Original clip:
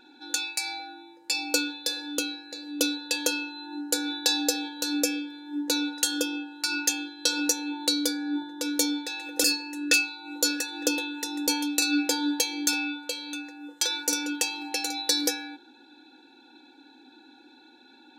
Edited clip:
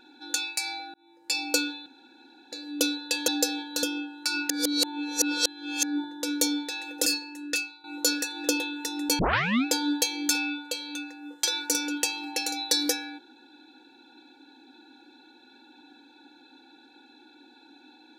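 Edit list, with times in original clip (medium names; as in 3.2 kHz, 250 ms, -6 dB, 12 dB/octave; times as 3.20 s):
0.94–1.33 s: fade in
1.86–2.52 s: room tone
3.28–4.34 s: delete
4.89–6.21 s: delete
6.88–8.21 s: reverse
9.17–10.22 s: fade out, to -12.5 dB
11.57 s: tape start 0.46 s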